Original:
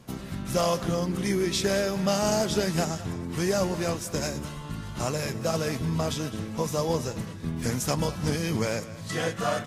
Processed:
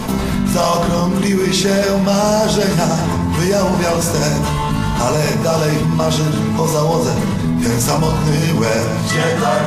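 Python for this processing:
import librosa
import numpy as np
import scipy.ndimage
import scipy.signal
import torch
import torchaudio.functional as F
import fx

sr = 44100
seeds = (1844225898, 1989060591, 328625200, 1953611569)

y = fx.peak_eq(x, sr, hz=920.0, db=6.0, octaves=0.49)
y = fx.room_shoebox(y, sr, seeds[0], volume_m3=720.0, walls='furnished', distance_m=1.5)
y = fx.env_flatten(y, sr, amount_pct=70)
y = y * 10.0 ** (5.0 / 20.0)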